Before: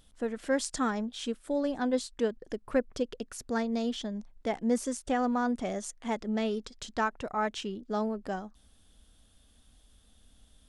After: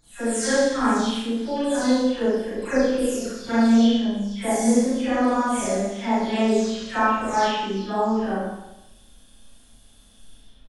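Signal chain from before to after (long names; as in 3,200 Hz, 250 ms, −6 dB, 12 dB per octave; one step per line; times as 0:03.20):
every frequency bin delayed by itself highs early, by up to 342 ms
double-tracking delay 36 ms −2.5 dB
four-comb reverb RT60 0.89 s, combs from 27 ms, DRR −8.5 dB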